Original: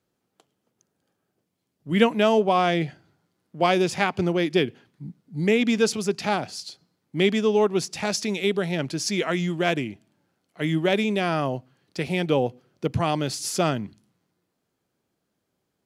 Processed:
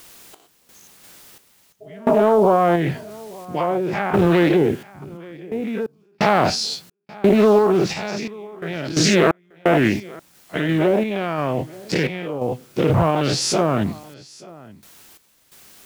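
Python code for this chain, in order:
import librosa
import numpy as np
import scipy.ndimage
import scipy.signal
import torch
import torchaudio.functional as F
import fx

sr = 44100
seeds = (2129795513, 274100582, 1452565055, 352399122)

p1 = fx.spec_dilate(x, sr, span_ms=120)
p2 = fx.env_lowpass_down(p1, sr, base_hz=900.0, full_db=-12.0)
p3 = fx.spec_repair(p2, sr, seeds[0], start_s=1.84, length_s=0.35, low_hz=320.0, high_hz=830.0, source='after')
p4 = fx.over_compress(p3, sr, threshold_db=-27.0, ratio=-1.0)
p5 = p3 + F.gain(torch.from_numpy(p4), -1.0).numpy()
p6 = fx.quant_dither(p5, sr, seeds[1], bits=8, dither='triangular')
p7 = fx.tremolo_random(p6, sr, seeds[2], hz=2.9, depth_pct=100)
p8 = p7 + fx.echo_single(p7, sr, ms=883, db=-22.0, dry=0)
p9 = fx.doppler_dist(p8, sr, depth_ms=0.35)
y = F.gain(torch.from_numpy(p9), 3.0).numpy()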